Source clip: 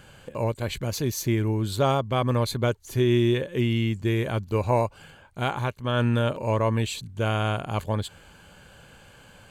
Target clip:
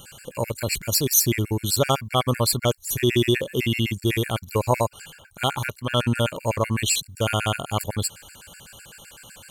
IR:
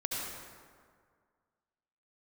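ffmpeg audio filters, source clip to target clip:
-af "crystalizer=i=4.5:c=0,afftfilt=real='re*gt(sin(2*PI*7.9*pts/sr)*(1-2*mod(floor(b*sr/1024/1400),2)),0)':imag='im*gt(sin(2*PI*7.9*pts/sr)*(1-2*mod(floor(b*sr/1024/1400),2)),0)':win_size=1024:overlap=0.75,volume=1.41"

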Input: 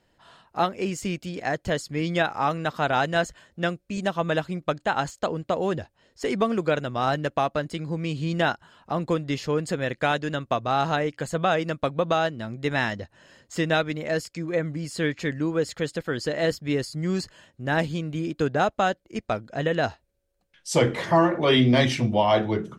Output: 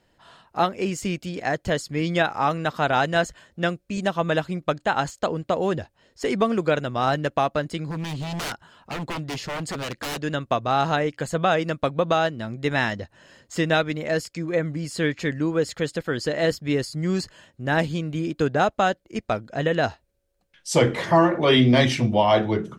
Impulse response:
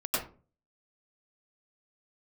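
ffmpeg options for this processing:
-filter_complex "[0:a]asettb=1/sr,asplit=3[s0][s1][s2];[s0]atrim=end=7.894[s3];[s1]atrim=start=7.89:end=10.22,asetpts=PTS-STARTPTS,afade=t=in:d=0.004:c=qsin,afade=t=out:st=2.326:d=0.004:c=qsin,aeval=exprs='0.0473*(abs(mod(val(0)/0.0473+3,4)-2)-1)':c=same[s4];[s2]atrim=start=10.216[s5];[s3][s4]acrossfade=d=0.004:c1=hsin:c2=qsin[s6];[s6][s5]acrossfade=d=0.004:c1=qsin:c2=hsin,volume=1.26"

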